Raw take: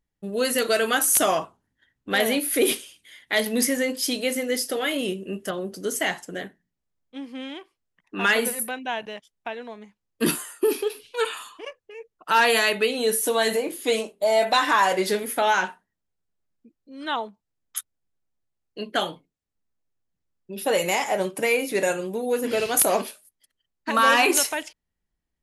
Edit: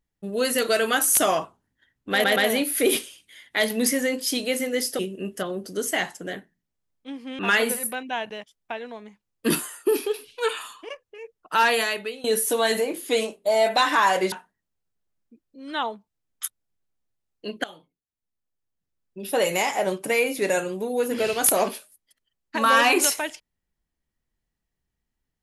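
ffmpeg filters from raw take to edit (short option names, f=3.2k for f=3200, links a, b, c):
-filter_complex "[0:a]asplit=8[a][b][c][d][e][f][g][h];[a]atrim=end=2.242[i];[b]atrim=start=2.118:end=2.242[j];[c]atrim=start=2.118:end=4.752[k];[d]atrim=start=5.068:end=7.472[l];[e]atrim=start=8.148:end=13,asetpts=PTS-STARTPTS,afade=t=out:st=4.162:d=0.69:silence=0.133352[m];[f]atrim=start=13:end=15.082,asetpts=PTS-STARTPTS,afade=t=in:d=0.004:c=hsin:silence=0.133352[n];[g]atrim=start=15.648:end=18.97,asetpts=PTS-STARTPTS,afade=t=out:st=3.318:d=0.004:c=hsin:silence=0.105925[o];[h]atrim=start=18.97,asetpts=PTS-STARTPTS,afade=t=in:d=1.7:silence=0.105925[p];[i][j]acrossfade=d=0.004:c1=hsin:c2=hsin[q];[q][k]acrossfade=d=0.004:c1=hsin:c2=hsin[r];[r][l]acrossfade=d=0.004:c1=hsin:c2=hsin[s];[m][n]concat=n=2:v=0:a=1[t];[s][t]acrossfade=d=0.004:c1=hsin:c2=hsin[u];[o][p]concat=n=2:v=0:a=1[v];[u][v]acrossfade=d=0.004:c1=hsin:c2=hsin"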